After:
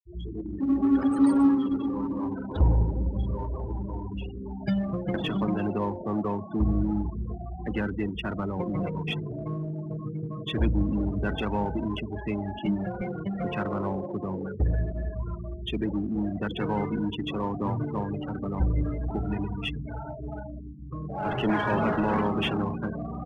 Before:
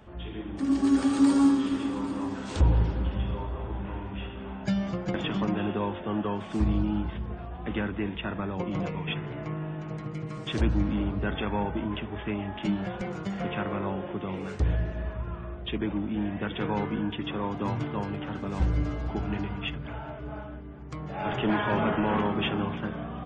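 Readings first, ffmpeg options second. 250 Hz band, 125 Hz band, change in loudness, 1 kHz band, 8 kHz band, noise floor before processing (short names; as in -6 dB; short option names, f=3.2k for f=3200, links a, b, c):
+1.0 dB, +1.0 dB, +1.0 dB, +0.5 dB, n/a, -39 dBFS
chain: -filter_complex "[0:a]afftfilt=real='re*gte(hypot(re,im),0.0282)':imag='im*gte(hypot(re,im),0.0282)':win_size=1024:overlap=0.75,asplit=2[a][b];[b]volume=32dB,asoftclip=hard,volume=-32dB,volume=-10dB[c];[a][c]amix=inputs=2:normalize=0"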